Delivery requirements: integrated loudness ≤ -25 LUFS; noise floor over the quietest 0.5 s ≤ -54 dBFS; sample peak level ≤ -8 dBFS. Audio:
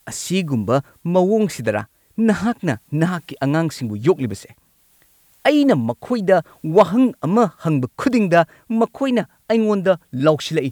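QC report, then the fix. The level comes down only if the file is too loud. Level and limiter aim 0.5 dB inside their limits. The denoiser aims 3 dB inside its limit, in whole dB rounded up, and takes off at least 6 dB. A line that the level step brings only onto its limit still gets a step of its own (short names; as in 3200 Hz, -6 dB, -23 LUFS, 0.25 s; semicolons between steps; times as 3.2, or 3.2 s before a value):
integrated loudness -19.0 LUFS: fail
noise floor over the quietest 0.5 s -57 dBFS: OK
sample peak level -2.5 dBFS: fail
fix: gain -6.5 dB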